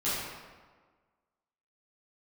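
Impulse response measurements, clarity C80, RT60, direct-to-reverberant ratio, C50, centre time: 1.0 dB, 1.5 s, −12.0 dB, −2.0 dB, 102 ms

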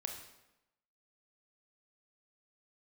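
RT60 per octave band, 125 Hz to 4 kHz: 0.90, 0.95, 0.95, 0.90, 0.85, 0.75 seconds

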